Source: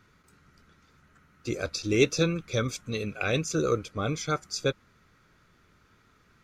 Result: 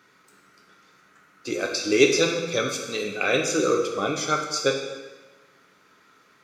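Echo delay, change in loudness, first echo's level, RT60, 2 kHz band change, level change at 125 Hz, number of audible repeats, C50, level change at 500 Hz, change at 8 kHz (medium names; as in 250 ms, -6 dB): no echo, +5.0 dB, no echo, 1.2 s, +7.0 dB, -6.0 dB, no echo, 5.0 dB, +6.0 dB, +7.0 dB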